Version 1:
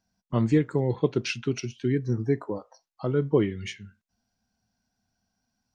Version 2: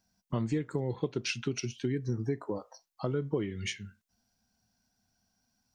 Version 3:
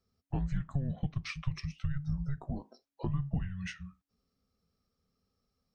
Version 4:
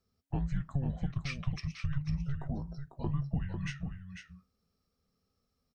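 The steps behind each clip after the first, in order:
high shelf 5200 Hz +7.5 dB; compressor 4:1, threshold -29 dBFS, peak gain reduction 11.5 dB
high shelf 2800 Hz -11 dB; frequency shift -280 Hz; gain -1 dB
echo 0.497 s -7.5 dB

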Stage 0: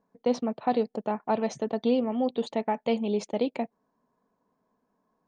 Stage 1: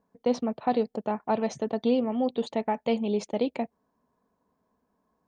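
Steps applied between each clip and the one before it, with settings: bell 68 Hz +13 dB 0.74 oct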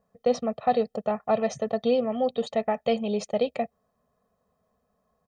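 comb 1.6 ms, depth 91%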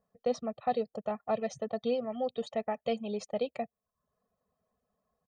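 reverb removal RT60 0.53 s; gain -7 dB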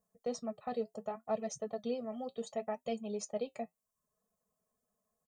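resonant high shelf 5200 Hz +10.5 dB, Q 1.5; comb 4.7 ms, depth 33%; flange 0.69 Hz, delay 5.5 ms, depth 3.5 ms, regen -64%; gain -2 dB

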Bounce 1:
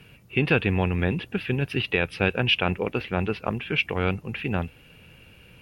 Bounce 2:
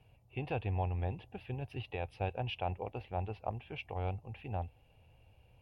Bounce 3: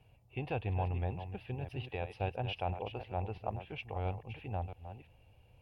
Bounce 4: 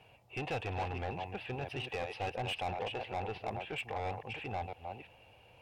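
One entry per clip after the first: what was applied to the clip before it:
EQ curve 110 Hz 0 dB, 170 Hz -13 dB, 430 Hz -9 dB, 780 Hz +4 dB, 1400 Hz -18 dB, 2700 Hz -13 dB; gain -7.5 dB
reverse delay 0.338 s, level -10 dB
overdrive pedal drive 24 dB, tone 3600 Hz, clips at -22 dBFS; gain -5.5 dB

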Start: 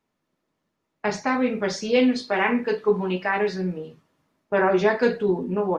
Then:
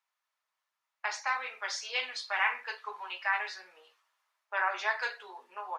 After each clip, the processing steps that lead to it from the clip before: HPF 910 Hz 24 dB/oct; gain -3.5 dB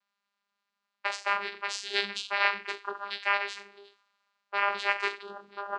vocoder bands 8, saw 201 Hz; fifteen-band EQ 250 Hz +7 dB, 630 Hz -8 dB, 4000 Hz +7 dB; gain +4.5 dB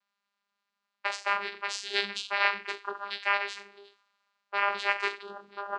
nothing audible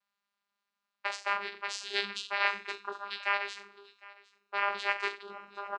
echo 0.757 s -22 dB; gain -3 dB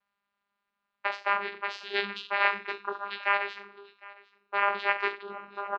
air absorption 310 m; gain +6.5 dB

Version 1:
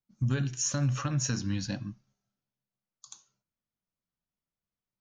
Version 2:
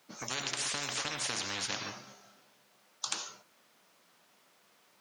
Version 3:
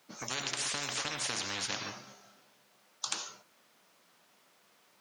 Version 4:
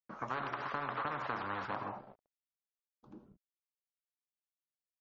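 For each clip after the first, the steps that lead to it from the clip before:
HPF 420 Hz 12 dB/oct; high shelf 6700 Hz -10.5 dB; spectral compressor 10:1; gain +8 dB
nothing audible
bit-crush 8-bit; low-pass sweep 1200 Hz -> 160 Hz, 1.64–3.62; MP3 32 kbps 44100 Hz

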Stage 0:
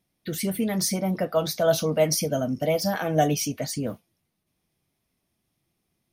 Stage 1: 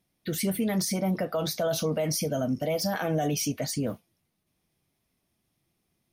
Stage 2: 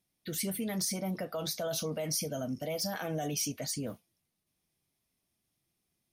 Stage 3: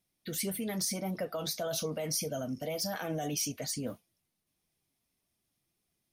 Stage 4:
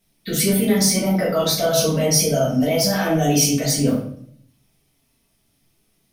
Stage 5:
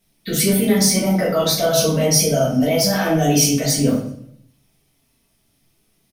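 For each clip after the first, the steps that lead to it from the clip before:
limiter -19.5 dBFS, peak gain reduction 10.5 dB
bell 8900 Hz +6.5 dB 2.7 oct; gain -8 dB
flange 1.7 Hz, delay 1.3 ms, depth 3.2 ms, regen +73%; gain +4.5 dB
shoebox room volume 88 m³, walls mixed, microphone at 1.6 m; gain +8.5 dB
feedback echo 0.122 s, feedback 43%, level -22 dB; gain +1.5 dB

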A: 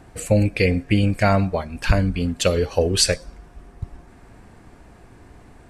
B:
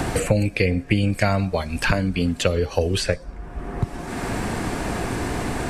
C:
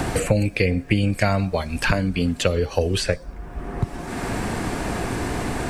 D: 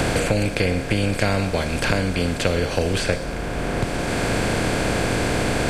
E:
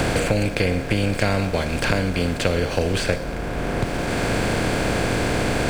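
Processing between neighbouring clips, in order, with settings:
three-band squash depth 100%; gain -1 dB
bit-crush 11-bit
per-bin compression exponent 0.4; gain -5 dB
backlash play -36 dBFS

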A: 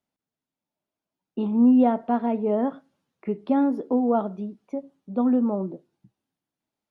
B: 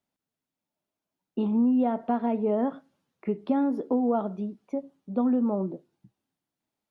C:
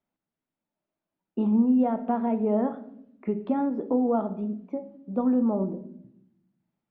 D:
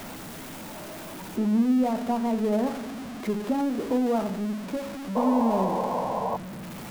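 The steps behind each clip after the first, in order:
compressor 4:1, threshold -21 dBFS, peak gain reduction 7 dB
LPF 2400 Hz 12 dB/oct; on a send at -9 dB: reverb RT60 0.75 s, pre-delay 3 ms
zero-crossing step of -29.5 dBFS; painted sound noise, 5.15–6.37, 440–1100 Hz -26 dBFS; gain -2 dB

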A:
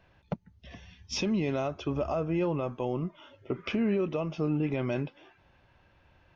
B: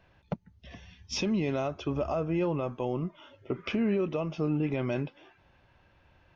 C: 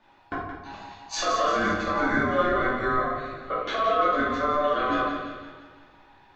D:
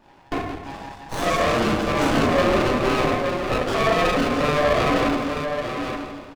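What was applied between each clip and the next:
nothing audible
thinning echo 0.171 s, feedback 55%, high-pass 190 Hz, level -8 dB; ring modulator 890 Hz; shoebox room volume 210 m³, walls mixed, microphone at 2.5 m
soft clip -17.5 dBFS, distortion -18 dB; echo 0.874 s -6.5 dB; running maximum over 17 samples; gain +7.5 dB

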